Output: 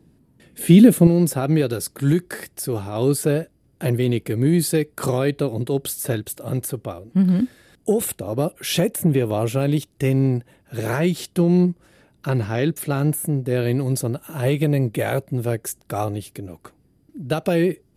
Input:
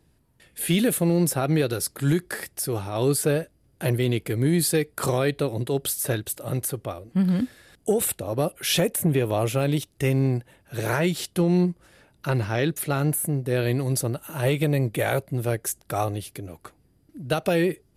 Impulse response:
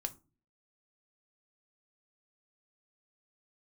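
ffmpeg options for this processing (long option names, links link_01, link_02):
-af "asetnsamples=nb_out_samples=441:pad=0,asendcmd='1.07 equalizer g 6',equalizer=frequency=230:width_type=o:width=2.2:gain=14.5,volume=-1dB"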